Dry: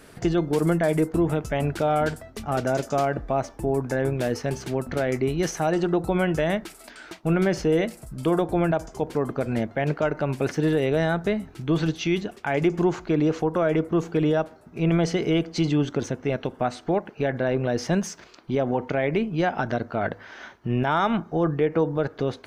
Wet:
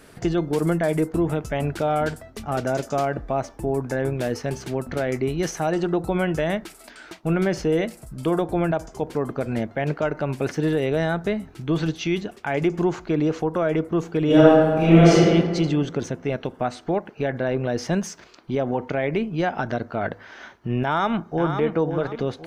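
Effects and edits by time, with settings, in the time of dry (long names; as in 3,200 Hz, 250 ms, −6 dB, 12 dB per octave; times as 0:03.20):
0:14.25–0:15.16: thrown reverb, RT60 1.6 s, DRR −10 dB
0:20.84–0:21.62: delay throw 530 ms, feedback 35%, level −7.5 dB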